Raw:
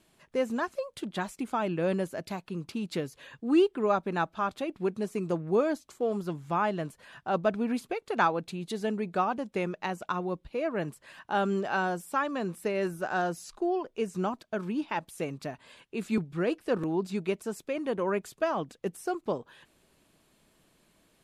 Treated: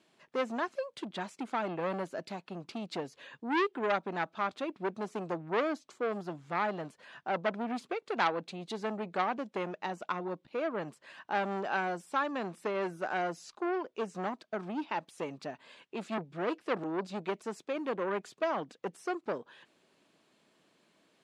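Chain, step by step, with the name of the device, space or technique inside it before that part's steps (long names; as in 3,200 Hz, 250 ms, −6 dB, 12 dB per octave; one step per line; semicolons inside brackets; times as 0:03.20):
public-address speaker with an overloaded transformer (saturating transformer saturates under 1,800 Hz; band-pass filter 210–6,100 Hz)
level −1 dB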